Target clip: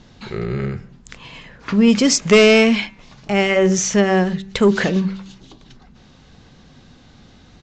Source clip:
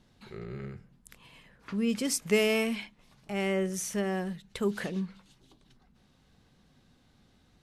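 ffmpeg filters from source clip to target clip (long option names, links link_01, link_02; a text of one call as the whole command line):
ffmpeg -i in.wav -af "bandreject=frequency=193.1:width_type=h:width=4,bandreject=frequency=386.2:width_type=h:width=4,bandreject=frequency=579.3:width_type=h:width=4,bandreject=frequency=772.4:width_type=h:width=4,bandreject=frequency=965.5:width_type=h:width=4,bandreject=frequency=1158.6:width_type=h:width=4,bandreject=frequency=1351.7:width_type=h:width=4,bandreject=frequency=1544.8:width_type=h:width=4,bandreject=frequency=1737.9:width_type=h:width=4,bandreject=frequency=1931:width_type=h:width=4,bandreject=frequency=2124.1:width_type=h:width=4,bandreject=frequency=2317.2:width_type=h:width=4,bandreject=frequency=2510.3:width_type=h:width=4,bandreject=frequency=2703.4:width_type=h:width=4,aresample=16000,aeval=exprs='0.188*sin(PI/2*1.58*val(0)/0.188)':channel_layout=same,aresample=44100,volume=9dB" out.wav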